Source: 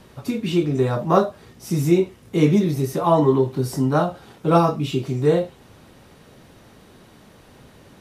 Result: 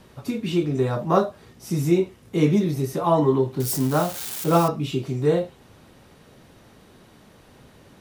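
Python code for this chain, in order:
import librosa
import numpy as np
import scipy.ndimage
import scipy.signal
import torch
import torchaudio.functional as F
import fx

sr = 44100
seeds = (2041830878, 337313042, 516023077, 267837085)

y = fx.crossing_spikes(x, sr, level_db=-18.5, at=(3.6, 4.68))
y = y * librosa.db_to_amplitude(-2.5)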